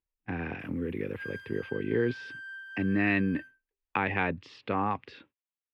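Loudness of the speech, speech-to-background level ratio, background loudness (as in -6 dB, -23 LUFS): -31.5 LUFS, 12.0 dB, -43.5 LUFS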